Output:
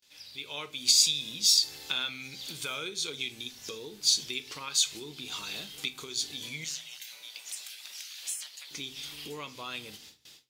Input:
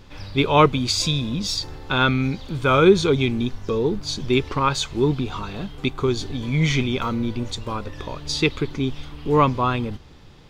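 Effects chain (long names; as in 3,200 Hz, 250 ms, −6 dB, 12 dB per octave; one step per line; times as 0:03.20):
noise gate with hold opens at −37 dBFS
downward compressor 6 to 1, threshold −29 dBFS, peak gain reduction 19 dB
0:06.64–0:08.71: gate on every frequency bin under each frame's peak −25 dB weak
parametric band 1,100 Hz −9.5 dB 1.4 octaves
rectangular room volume 240 cubic metres, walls furnished, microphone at 0.54 metres
automatic gain control gain up to 15 dB
first difference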